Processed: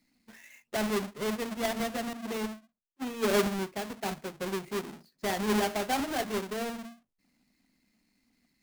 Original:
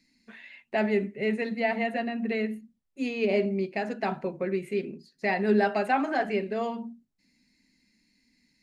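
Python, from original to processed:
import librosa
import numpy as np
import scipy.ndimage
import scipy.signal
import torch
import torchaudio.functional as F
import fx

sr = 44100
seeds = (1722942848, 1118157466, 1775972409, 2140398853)

y = fx.halfwave_hold(x, sr)
y = fx.band_widen(y, sr, depth_pct=100, at=(2.13, 4.4))
y = F.gain(torch.from_numpy(y), -8.5).numpy()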